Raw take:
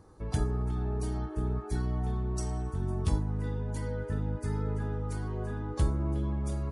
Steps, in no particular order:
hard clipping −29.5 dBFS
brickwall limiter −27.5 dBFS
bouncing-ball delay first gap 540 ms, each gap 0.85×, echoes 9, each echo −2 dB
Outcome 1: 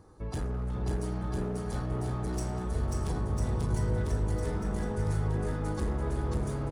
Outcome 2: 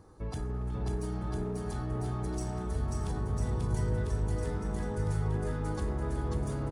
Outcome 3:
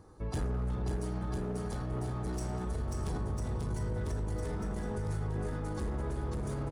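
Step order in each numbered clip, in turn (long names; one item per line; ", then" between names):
hard clipping, then brickwall limiter, then bouncing-ball delay
brickwall limiter, then hard clipping, then bouncing-ball delay
hard clipping, then bouncing-ball delay, then brickwall limiter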